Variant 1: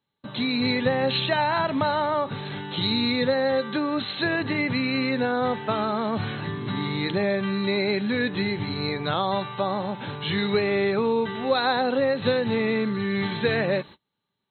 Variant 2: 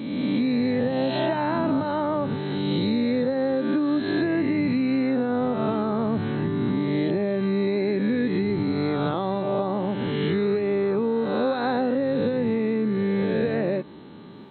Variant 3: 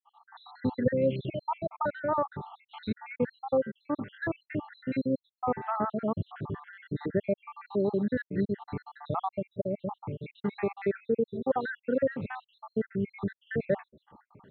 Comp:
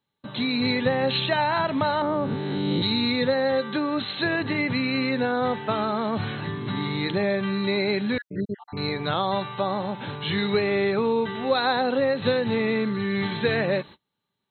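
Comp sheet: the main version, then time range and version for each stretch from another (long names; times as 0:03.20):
1
0:02.02–0:02.82: punch in from 2
0:08.18–0:08.77: punch in from 3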